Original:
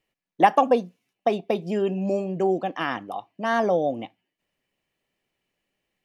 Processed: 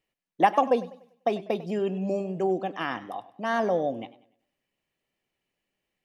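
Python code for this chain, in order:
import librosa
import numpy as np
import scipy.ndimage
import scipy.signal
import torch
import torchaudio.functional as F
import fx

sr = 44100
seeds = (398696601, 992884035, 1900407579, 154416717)

y = fx.echo_warbled(x, sr, ms=98, feedback_pct=37, rate_hz=2.8, cents=93, wet_db=-17)
y = y * librosa.db_to_amplitude(-3.5)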